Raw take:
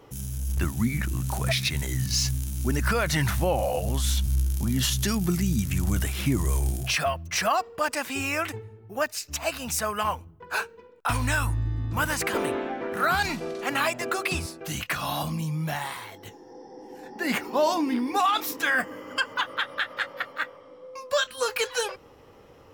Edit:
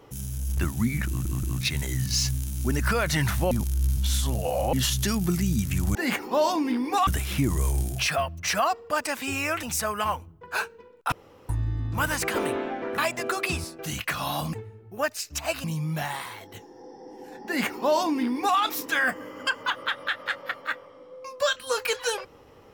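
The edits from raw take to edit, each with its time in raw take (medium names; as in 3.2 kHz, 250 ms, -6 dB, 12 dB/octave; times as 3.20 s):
1.07 s: stutter in place 0.18 s, 3 plays
3.51–4.73 s: reverse
8.51–9.62 s: move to 15.35 s
11.11–11.48 s: room tone
12.97–13.80 s: delete
17.17–18.29 s: copy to 5.95 s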